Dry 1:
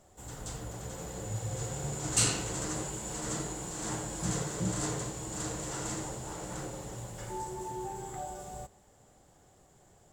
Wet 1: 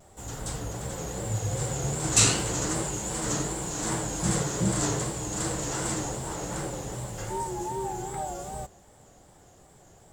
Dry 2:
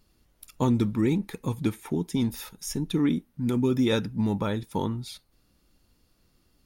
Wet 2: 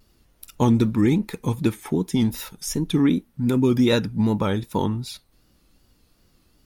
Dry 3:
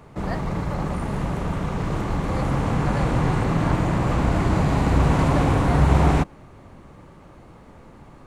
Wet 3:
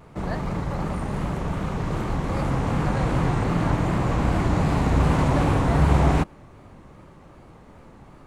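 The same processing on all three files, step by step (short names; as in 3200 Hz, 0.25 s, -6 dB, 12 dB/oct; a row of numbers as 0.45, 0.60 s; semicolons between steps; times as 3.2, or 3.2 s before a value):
vibrato 2.6 Hz 90 cents; normalise peaks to -6 dBFS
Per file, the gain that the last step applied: +6.5, +5.0, -1.5 dB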